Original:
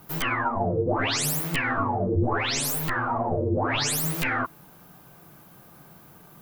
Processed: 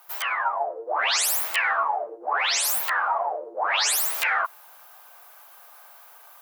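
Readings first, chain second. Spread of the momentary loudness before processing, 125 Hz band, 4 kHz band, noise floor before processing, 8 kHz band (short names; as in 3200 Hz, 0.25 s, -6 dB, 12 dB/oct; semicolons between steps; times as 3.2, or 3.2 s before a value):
3 LU, under -40 dB, +4.0 dB, -51 dBFS, +4.0 dB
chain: inverse Chebyshev high-pass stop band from 150 Hz, stop band 70 dB; AGC gain up to 4 dB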